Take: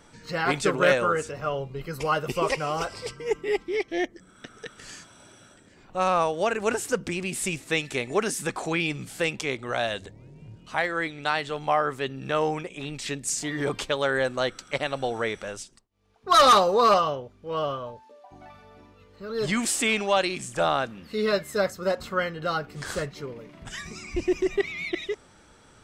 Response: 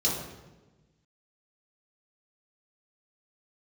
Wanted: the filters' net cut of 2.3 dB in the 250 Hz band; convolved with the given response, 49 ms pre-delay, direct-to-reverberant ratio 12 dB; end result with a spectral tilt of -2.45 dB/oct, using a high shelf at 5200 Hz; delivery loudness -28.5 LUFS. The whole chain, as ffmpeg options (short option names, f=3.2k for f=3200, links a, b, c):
-filter_complex "[0:a]equalizer=f=250:t=o:g=-3.5,highshelf=f=5.2k:g=8.5,asplit=2[a][b];[1:a]atrim=start_sample=2205,adelay=49[c];[b][c]afir=irnorm=-1:irlink=0,volume=-21.5dB[d];[a][d]amix=inputs=2:normalize=0,volume=-3.5dB"